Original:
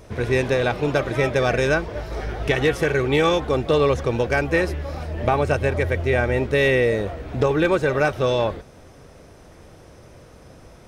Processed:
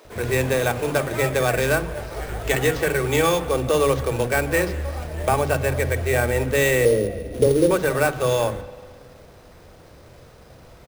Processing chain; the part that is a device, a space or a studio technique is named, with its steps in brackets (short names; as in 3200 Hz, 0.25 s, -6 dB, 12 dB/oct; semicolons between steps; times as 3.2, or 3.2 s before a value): notches 50/100/150/200/250 Hz; 6.85–7.71 EQ curve 100 Hz 0 dB, 500 Hz +6 dB, 1100 Hz -23 dB; early companding sampler (sample-rate reducer 10000 Hz, jitter 0%; companded quantiser 6-bit); bands offset in time highs, lows 50 ms, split 290 Hz; spring tank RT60 1.9 s, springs 46/54 ms, chirp 35 ms, DRR 14.5 dB